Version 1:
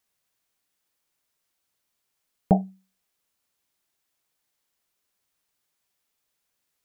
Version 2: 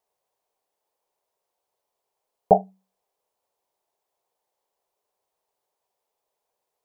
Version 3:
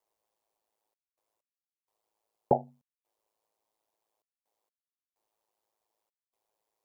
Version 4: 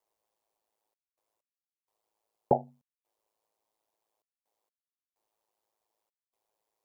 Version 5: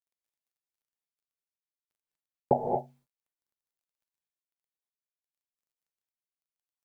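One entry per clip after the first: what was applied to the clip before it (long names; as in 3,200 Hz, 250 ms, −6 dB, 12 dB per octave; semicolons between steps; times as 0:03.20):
flat-topped bell 630 Hz +16 dB; level −7 dB
downward compressor 3 to 1, threshold −17 dBFS, peak gain reduction 7 dB; gate pattern "xxxx.x..xxxx.x" 64 BPM; ring modulation 54 Hz
no processing that can be heard
bit-depth reduction 12 bits, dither none; reverb whose tail is shaped and stops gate 260 ms rising, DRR 2.5 dB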